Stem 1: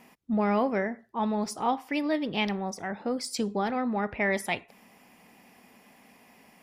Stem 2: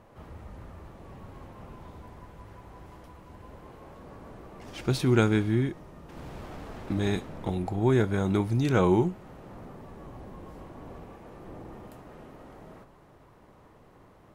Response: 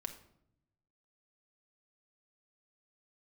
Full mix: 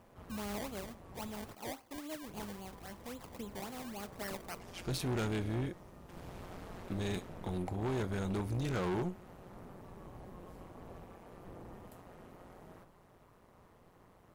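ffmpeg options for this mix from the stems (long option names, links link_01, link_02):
-filter_complex "[0:a]acrusher=samples=23:mix=1:aa=0.000001:lfo=1:lforange=23:lforate=3.7,volume=-18dB,asplit=2[link_01][link_02];[link_02]volume=-10.5dB[link_03];[1:a]equalizer=frequency=300:width=7.7:gain=-5,tremolo=f=180:d=0.75,volume=-3dB,asplit=3[link_04][link_05][link_06];[link_04]atrim=end=1.55,asetpts=PTS-STARTPTS,afade=type=out:start_time=1.546:duration=0.004:curve=hsin[link_07];[link_05]atrim=start=1.55:end=2.27,asetpts=PTS-STARTPTS,volume=0[link_08];[link_06]atrim=start=2.27,asetpts=PTS-STARTPTS,afade=type=in:duration=0.004:curve=hsin[link_09];[link_07][link_08][link_09]concat=n=3:v=0:a=1[link_10];[2:a]atrim=start_sample=2205[link_11];[link_03][link_11]afir=irnorm=-1:irlink=0[link_12];[link_01][link_10][link_12]amix=inputs=3:normalize=0,highshelf=frequency=7700:gain=7.5,volume=31dB,asoftclip=hard,volume=-31dB"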